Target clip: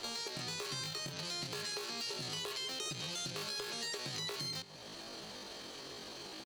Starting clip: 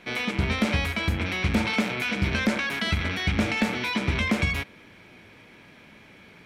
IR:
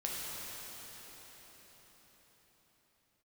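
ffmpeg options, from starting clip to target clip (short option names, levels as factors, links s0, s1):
-filter_complex "[0:a]bandreject=f=50:t=h:w=6,bandreject=f=100:t=h:w=6,bandreject=f=150:t=h:w=6,bandreject=f=200:t=h:w=6,bandreject=f=250:t=h:w=6,acompressor=threshold=0.00562:ratio=2,asplit=2[s0][s1];[s1]adelay=163,lowpass=f=990:p=1,volume=0.1,asplit=2[s2][s3];[s3]adelay=163,lowpass=f=990:p=1,volume=0.45,asplit=2[s4][s5];[s5]adelay=163,lowpass=f=990:p=1,volume=0.45[s6];[s2][s4][s6]amix=inputs=3:normalize=0[s7];[s0][s7]amix=inputs=2:normalize=0,asetrate=83250,aresample=44100,atempo=0.529732,acrossover=split=440|1200[s8][s9][s10];[s8]acompressor=threshold=0.00251:ratio=4[s11];[s9]acompressor=threshold=0.00126:ratio=4[s12];[s10]acompressor=threshold=0.00794:ratio=4[s13];[s11][s12][s13]amix=inputs=3:normalize=0,asoftclip=type=hard:threshold=0.015,volume=1.58"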